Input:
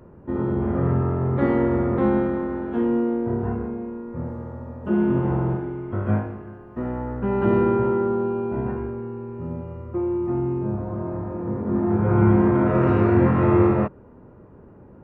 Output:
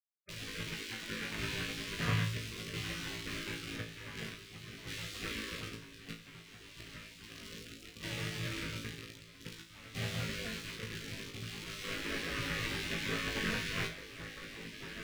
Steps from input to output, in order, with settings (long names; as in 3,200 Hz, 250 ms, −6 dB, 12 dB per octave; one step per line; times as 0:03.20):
0:05.75–0:08.03: downward compressor 3 to 1, threshold −33 dBFS, peak gain reduction 13.5 dB
centre clipping without the shift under −25 dBFS
high-pass filter 75 Hz 12 dB per octave
feedback delay with all-pass diffusion 1,915 ms, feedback 54%, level −10 dB
amplitude modulation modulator 99 Hz, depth 55%
low shelf with overshoot 510 Hz −14 dB, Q 3
gate on every frequency bin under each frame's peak −20 dB weak
low-pass filter 1,500 Hz 6 dB per octave
parametric band 120 Hz +11 dB 1.2 octaves
flutter between parallel walls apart 3.1 metres, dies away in 0.29 s
level +6.5 dB